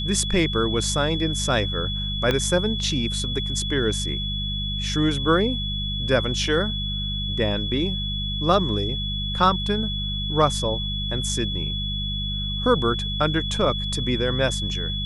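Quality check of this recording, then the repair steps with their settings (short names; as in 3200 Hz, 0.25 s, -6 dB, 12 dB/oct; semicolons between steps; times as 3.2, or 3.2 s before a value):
hum 50 Hz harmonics 4 -29 dBFS
tone 3400 Hz -28 dBFS
2.31 pop -9 dBFS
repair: de-click; de-hum 50 Hz, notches 4; notch 3400 Hz, Q 30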